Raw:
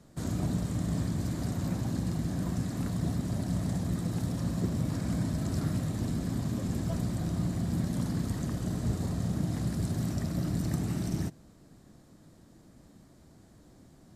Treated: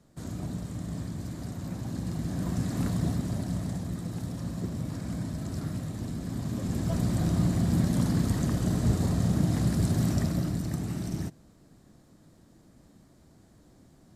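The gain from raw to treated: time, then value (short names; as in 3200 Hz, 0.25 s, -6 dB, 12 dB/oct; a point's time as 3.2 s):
1.65 s -4.5 dB
2.84 s +4 dB
3.92 s -3 dB
6.18 s -3 dB
7.19 s +5.5 dB
10.22 s +5.5 dB
10.63 s -1 dB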